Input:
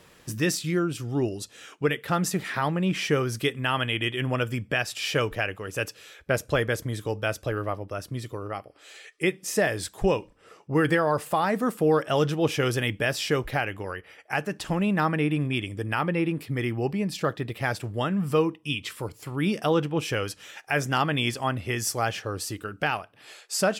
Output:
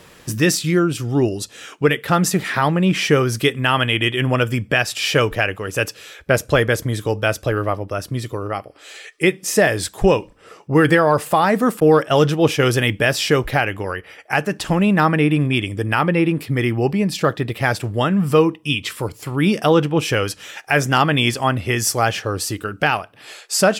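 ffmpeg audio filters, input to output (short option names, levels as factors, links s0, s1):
-filter_complex "[0:a]asettb=1/sr,asplit=3[s0][s1][s2];[s0]atrim=end=11.804[s3];[s1]atrim=start=11.8:end=12.73,asetpts=PTS-STARTPTS,afade=t=in:d=0.004:c=qsin,afade=t=out:st=0.926:d=0.004:c=qsin,agate=range=0.0224:threshold=0.0562:ratio=3:detection=peak[s4];[s2]atrim=start=12.726[s5];[s3][s4]acrossfade=d=0.004:c1=hsin:c2=qsin[s6];[s6][s5]acrossfade=d=0.004:c1=qsin:c2=hsin,acontrast=20,volume=1.58"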